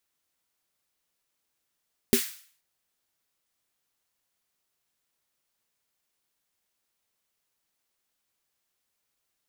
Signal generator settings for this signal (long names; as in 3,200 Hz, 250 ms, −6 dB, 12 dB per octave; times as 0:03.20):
synth snare length 0.48 s, tones 240 Hz, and 390 Hz, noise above 1,500 Hz, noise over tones −7 dB, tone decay 0.11 s, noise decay 0.50 s